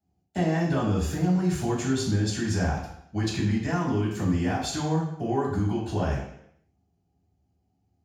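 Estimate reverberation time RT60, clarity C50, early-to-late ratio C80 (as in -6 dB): 0.70 s, 3.5 dB, 6.5 dB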